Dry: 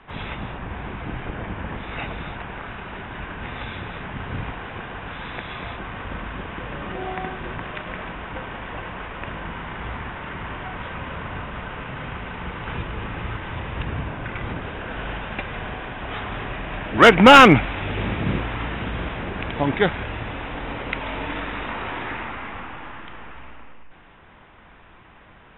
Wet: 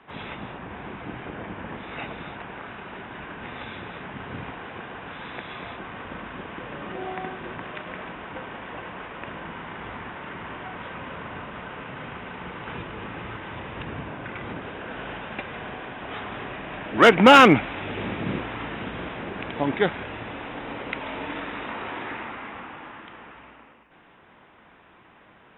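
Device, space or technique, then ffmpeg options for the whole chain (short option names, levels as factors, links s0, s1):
filter by subtraction: -filter_complex "[0:a]asplit=2[s0][s1];[s1]lowpass=280,volume=-1[s2];[s0][s2]amix=inputs=2:normalize=0,volume=0.631"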